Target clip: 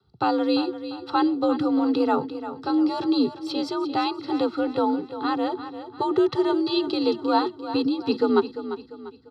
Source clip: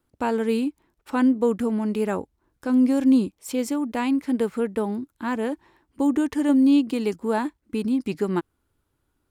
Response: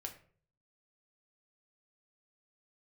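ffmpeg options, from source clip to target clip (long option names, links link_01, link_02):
-filter_complex "[0:a]firequalizer=gain_entry='entry(150,0);entry(310,14);entry(520,-14);entry(790,9);entry(2000,-10);entry(4100,12);entry(6700,-17);entry(12000,-25)':delay=0.05:min_phase=1,afreqshift=58,aecho=1:1:1.5:1,acrossover=split=230|660|1800[link_01][link_02][link_03][link_04];[link_01]acontrast=47[link_05];[link_05][link_02][link_03][link_04]amix=inputs=4:normalize=0,aecho=1:1:346|692|1038|1384:0.266|0.106|0.0426|0.017"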